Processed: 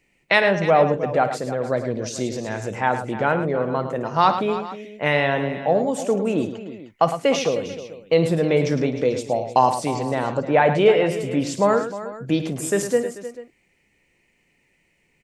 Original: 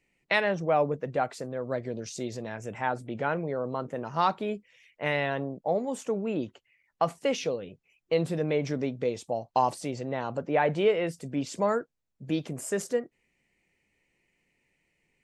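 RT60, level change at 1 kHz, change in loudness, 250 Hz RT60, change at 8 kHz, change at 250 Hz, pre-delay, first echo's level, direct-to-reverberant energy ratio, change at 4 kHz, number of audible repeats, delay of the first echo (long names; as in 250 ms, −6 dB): no reverb audible, +9.0 dB, +8.5 dB, no reverb audible, +9.0 dB, +8.5 dB, no reverb audible, −15.0 dB, no reverb audible, +9.0 dB, 4, 55 ms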